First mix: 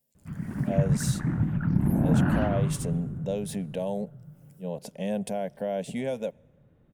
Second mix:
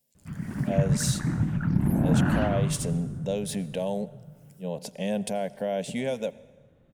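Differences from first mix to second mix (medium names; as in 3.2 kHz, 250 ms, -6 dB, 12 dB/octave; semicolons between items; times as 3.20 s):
speech: send +11.5 dB; master: add peaking EQ 4.7 kHz +5.5 dB 2.5 oct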